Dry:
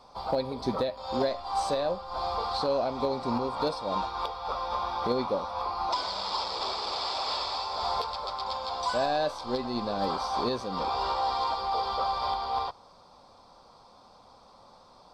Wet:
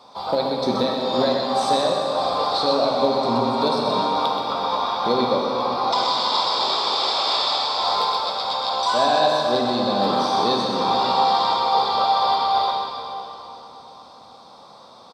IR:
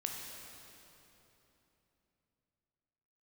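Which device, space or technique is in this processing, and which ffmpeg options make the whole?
PA in a hall: -filter_complex "[0:a]highpass=150,equalizer=frequency=3700:width_type=o:width=0.22:gain=8,aecho=1:1:126:0.473[link_01];[1:a]atrim=start_sample=2205[link_02];[link_01][link_02]afir=irnorm=-1:irlink=0,volume=7.5dB"

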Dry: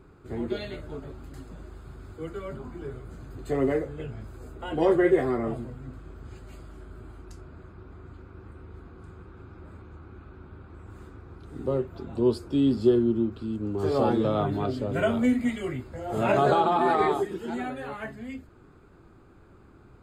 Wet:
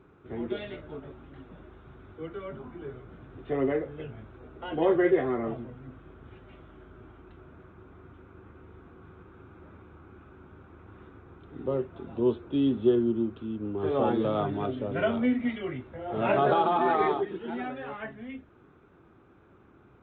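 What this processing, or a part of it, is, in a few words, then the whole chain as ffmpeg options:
Bluetooth headset: -af "highpass=frequency=140:poles=1,aresample=8000,aresample=44100,volume=-1.5dB" -ar 16000 -c:a sbc -b:a 64k

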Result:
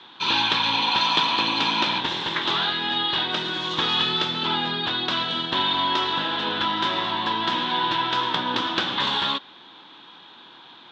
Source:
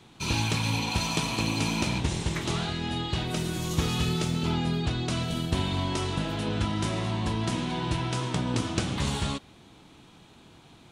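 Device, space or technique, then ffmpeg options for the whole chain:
phone earpiece: -af "highpass=410,equalizer=frequency=440:width_type=q:width=4:gain=-5,equalizer=frequency=660:width_type=q:width=4:gain=-6,equalizer=frequency=980:width_type=q:width=4:gain=6,equalizer=frequency=1600:width_type=q:width=4:gain=6,equalizer=frequency=2300:width_type=q:width=4:gain=-4,equalizer=frequency=3500:width_type=q:width=4:gain=10,lowpass=frequency=4100:width=0.5412,lowpass=frequency=4100:width=1.3066,volume=7.5dB"

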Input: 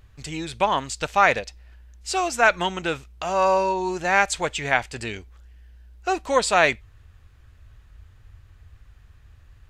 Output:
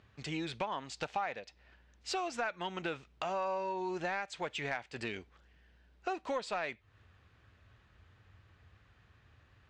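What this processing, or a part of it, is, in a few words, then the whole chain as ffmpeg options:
AM radio: -filter_complex "[0:a]asettb=1/sr,asplit=3[link_01][link_02][link_03];[link_01]atrim=end=0.824[link_04];[link_02]atrim=start=0.82:end=1.36,asetpts=PTS-STARTPTS,afade=type=in:duration=0.004:curve=qsin,afade=type=out:start_time=0.536:duration=0.004:curve=qsin,equalizer=frequency=780:width=4.9:gain=7[link_05];[link_03]atrim=start=1.356[link_06];[link_04][link_05]acrossfade=duration=0.004:curve1=hsin:curve2=qsin[link_07];[link_07][link_06]acrossfade=duration=0.004:curve1=qsin:curve2=hsin,highpass=140,lowpass=4300,acompressor=threshold=-30dB:ratio=6,asoftclip=type=tanh:threshold=-20dB,volume=-3dB"

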